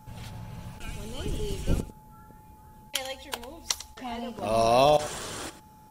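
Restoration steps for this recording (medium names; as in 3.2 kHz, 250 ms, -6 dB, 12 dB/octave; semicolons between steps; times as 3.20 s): band-stop 860 Hz, Q 30; expander -44 dBFS, range -21 dB; inverse comb 99 ms -14.5 dB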